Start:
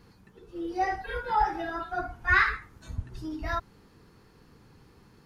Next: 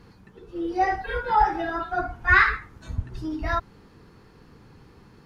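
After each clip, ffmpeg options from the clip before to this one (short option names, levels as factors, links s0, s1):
-af "highshelf=f=6100:g=-8.5,volume=1.88"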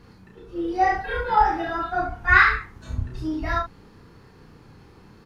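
-af "aecho=1:1:32|69:0.708|0.335"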